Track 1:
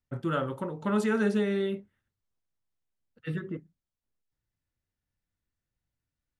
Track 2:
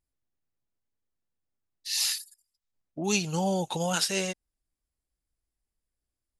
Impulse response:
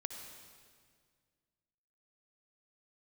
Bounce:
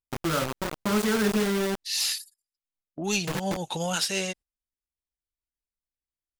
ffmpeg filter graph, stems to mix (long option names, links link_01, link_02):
-filter_complex "[0:a]highpass=frequency=41:width=0.5412,highpass=frequency=41:width=1.3066,acrusher=bits=4:mix=0:aa=0.000001,volume=1.5dB,asplit=2[link_01][link_02];[1:a]equalizer=frequency=3100:width_type=o:width=1.6:gain=3,asoftclip=type=tanh:threshold=-16.5dB,volume=0dB[link_03];[link_02]apad=whole_len=281897[link_04];[link_03][link_04]sidechaincompress=threshold=-33dB:ratio=8:attack=16:release=144[link_05];[link_01][link_05]amix=inputs=2:normalize=0,agate=range=-13dB:threshold=-44dB:ratio=16:detection=peak"